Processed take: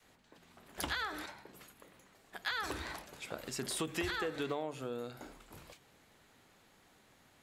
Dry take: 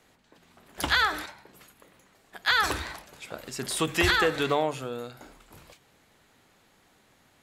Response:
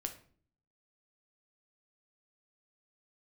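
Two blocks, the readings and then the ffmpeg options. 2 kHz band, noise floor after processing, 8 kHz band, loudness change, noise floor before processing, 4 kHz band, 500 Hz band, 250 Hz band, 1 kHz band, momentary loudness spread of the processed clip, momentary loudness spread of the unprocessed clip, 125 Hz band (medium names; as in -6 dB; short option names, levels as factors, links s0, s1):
-13.5 dB, -66 dBFS, -8.0 dB, -12.5 dB, -63 dBFS, -13.0 dB, -10.5 dB, -8.5 dB, -13.0 dB, 19 LU, 19 LU, -11.0 dB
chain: -af "adynamicequalizer=threshold=0.0141:dfrequency=320:dqfactor=0.82:tfrequency=320:tqfactor=0.82:attack=5:release=100:ratio=0.375:range=2.5:mode=boostabove:tftype=bell,acompressor=threshold=0.0224:ratio=4,volume=0.708"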